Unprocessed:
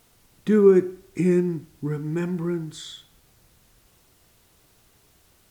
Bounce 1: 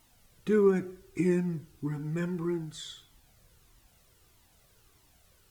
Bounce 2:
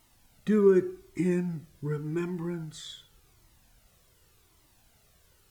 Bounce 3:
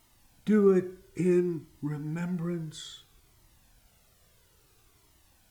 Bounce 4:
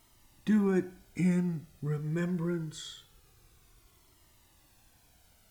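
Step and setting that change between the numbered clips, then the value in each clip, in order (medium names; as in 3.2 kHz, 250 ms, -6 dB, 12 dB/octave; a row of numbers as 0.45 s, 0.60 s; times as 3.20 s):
Shepard-style flanger, rate: 1.6 Hz, 0.87 Hz, 0.59 Hz, 0.24 Hz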